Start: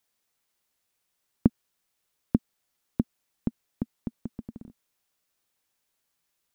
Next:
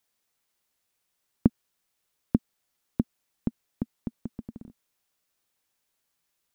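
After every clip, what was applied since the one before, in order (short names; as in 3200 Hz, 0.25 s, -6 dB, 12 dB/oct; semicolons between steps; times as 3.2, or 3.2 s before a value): nothing audible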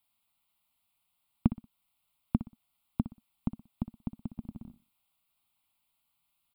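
in parallel at -2.5 dB: compressor, threshold -30 dBFS, peak gain reduction 16 dB; on the sum: fixed phaser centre 1700 Hz, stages 6; feedback echo 61 ms, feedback 29%, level -13.5 dB; gain -3 dB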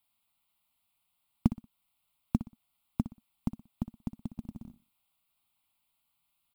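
short-mantissa float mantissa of 4-bit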